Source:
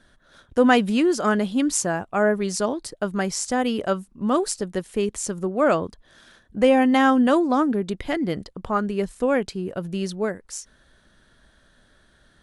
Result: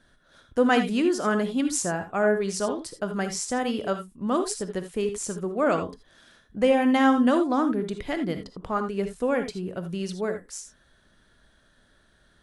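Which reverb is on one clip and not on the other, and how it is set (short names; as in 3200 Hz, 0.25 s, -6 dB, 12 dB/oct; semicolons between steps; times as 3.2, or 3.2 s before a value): non-linear reverb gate 0.1 s rising, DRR 7.5 dB; gain -4 dB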